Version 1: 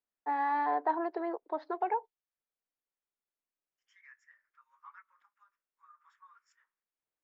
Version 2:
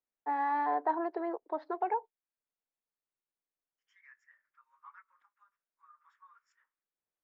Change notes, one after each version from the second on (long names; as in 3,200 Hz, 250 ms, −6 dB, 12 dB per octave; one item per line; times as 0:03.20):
master: add high-shelf EQ 3,200 Hz −7 dB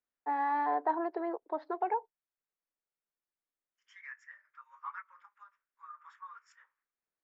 second voice +11.5 dB